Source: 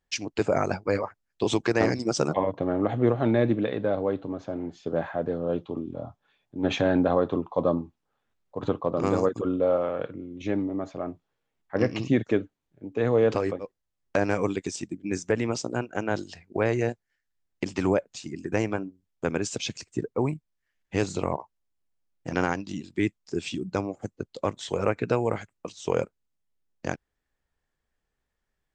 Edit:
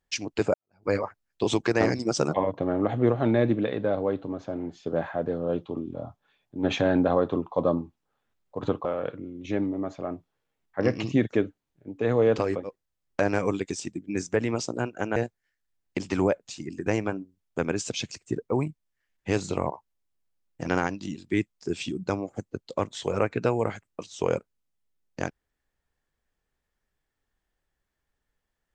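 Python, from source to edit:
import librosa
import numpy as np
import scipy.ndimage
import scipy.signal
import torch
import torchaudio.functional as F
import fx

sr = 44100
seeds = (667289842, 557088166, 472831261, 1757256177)

y = fx.edit(x, sr, fx.fade_in_span(start_s=0.54, length_s=0.31, curve='exp'),
    fx.cut(start_s=8.85, length_s=0.96),
    fx.cut(start_s=16.12, length_s=0.7), tone=tone)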